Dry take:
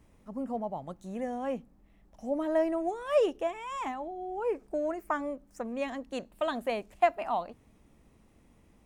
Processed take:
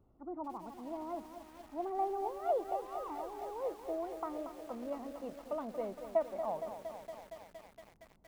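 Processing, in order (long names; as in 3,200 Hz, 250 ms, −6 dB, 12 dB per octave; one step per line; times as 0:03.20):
gliding playback speed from 135% → 79%
Savitzky-Golay smoothing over 65 samples
feedback echo at a low word length 232 ms, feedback 80%, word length 8 bits, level −9 dB
level −7 dB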